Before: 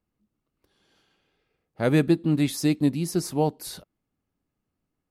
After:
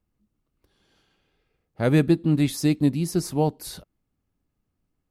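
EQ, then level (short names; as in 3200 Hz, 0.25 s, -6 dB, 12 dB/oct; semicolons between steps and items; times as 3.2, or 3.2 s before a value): low shelf 99 Hz +10 dB; 0.0 dB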